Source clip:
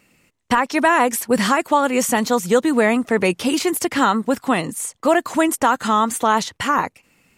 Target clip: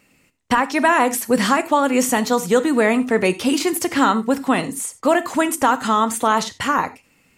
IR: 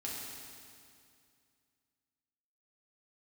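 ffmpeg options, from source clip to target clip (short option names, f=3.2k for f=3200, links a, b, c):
-filter_complex "[0:a]asplit=2[a][b];[1:a]atrim=start_sample=2205,atrim=end_sample=4410[c];[b][c]afir=irnorm=-1:irlink=0,volume=-7.5dB[d];[a][d]amix=inputs=2:normalize=0,volume=-2dB"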